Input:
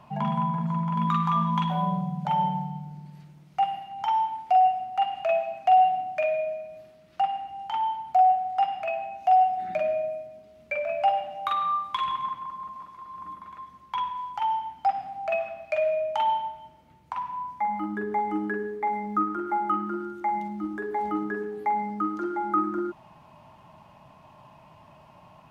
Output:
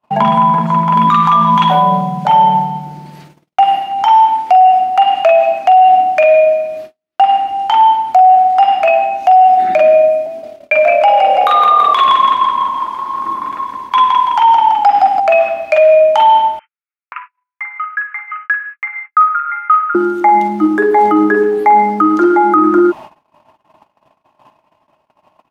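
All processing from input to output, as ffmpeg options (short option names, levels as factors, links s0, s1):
-filter_complex "[0:a]asettb=1/sr,asplit=3[s0][s1][s2];[s0]atrim=end=10.264[s3];[s1]atrim=start=10.26:end=15.2,asetpts=PTS-STARTPTS,afade=t=in:d=0.004:c=qsin,afade=t=out:st=4.936:d=0.004:c=qsin,afreqshift=26,asplit=8[s4][s5][s6][s7][s8][s9][s10][s11];[s5]adelay=166,afreqshift=-36,volume=0.501[s12];[s6]adelay=332,afreqshift=-72,volume=0.269[s13];[s7]adelay=498,afreqshift=-108,volume=0.146[s14];[s8]adelay=664,afreqshift=-144,volume=0.0785[s15];[s9]adelay=830,afreqshift=-180,volume=0.0427[s16];[s10]adelay=996,afreqshift=-216,volume=0.0229[s17];[s11]adelay=1162,afreqshift=-252,volume=0.0124[s18];[s4][s12][s13][s14][s15][s16][s17][s18]amix=inputs=8:normalize=0,atrim=end_sample=217854[s19];[s2]atrim=start=15.196[s20];[s3][s19]acrossfade=d=0.004:c1=hsin:c2=qsin[s21];[s21][s20]acrossfade=d=0.004:c1=qsin:c2=hsin,asettb=1/sr,asplit=3[s22][s23][s24];[s22]atrim=end=16.594[s25];[s23]atrim=start=16.59:end=19.95,asetpts=PTS-STARTPTS,afade=t=in:d=0.004:c=qsin,afade=t=out:st=3.356:d=0.004:c=qsin,asuperpass=centerf=1800:order=12:qfactor=1.2,bandreject=f=1800:w=29[s26];[s24]atrim=start=19.946[s27];[s25][s26]acrossfade=d=0.004:c1=hsin:c2=qsin[s28];[s28][s27]acrossfade=d=0.004:c1=qsin:c2=hsin,agate=range=0.00501:threshold=0.00398:ratio=16:detection=peak,lowshelf=f=220:t=q:w=1.5:g=-9,alimiter=level_in=10.6:limit=0.891:release=50:level=0:latency=1,volume=0.891"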